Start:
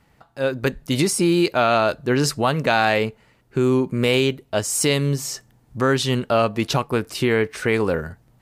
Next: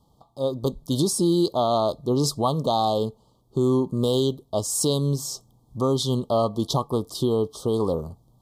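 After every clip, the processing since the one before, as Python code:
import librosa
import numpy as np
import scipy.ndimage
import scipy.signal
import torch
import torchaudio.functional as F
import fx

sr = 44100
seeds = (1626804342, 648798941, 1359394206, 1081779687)

y = scipy.signal.sosfilt(scipy.signal.cheby1(5, 1.0, [1200.0, 3200.0], 'bandstop', fs=sr, output='sos'), x)
y = F.gain(torch.from_numpy(y), -2.0).numpy()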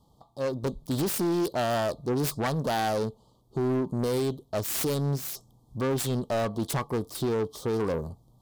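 y = fx.self_delay(x, sr, depth_ms=0.31)
y = 10.0 ** (-21.0 / 20.0) * np.tanh(y / 10.0 ** (-21.0 / 20.0))
y = F.gain(torch.from_numpy(y), -1.0).numpy()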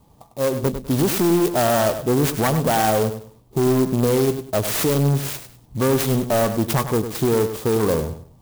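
y = fx.echo_feedback(x, sr, ms=100, feedback_pct=26, wet_db=-10)
y = fx.clock_jitter(y, sr, seeds[0], jitter_ms=0.059)
y = F.gain(torch.from_numpy(y), 8.5).numpy()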